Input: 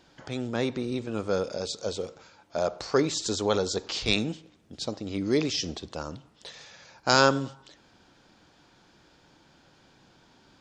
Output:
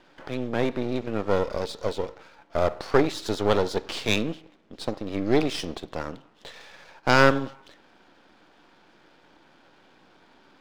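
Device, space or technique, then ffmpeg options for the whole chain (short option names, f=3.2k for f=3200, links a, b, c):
crystal radio: -af "highpass=240,lowpass=3.1k,aeval=exprs='if(lt(val(0),0),0.251*val(0),val(0))':c=same,volume=7.5dB"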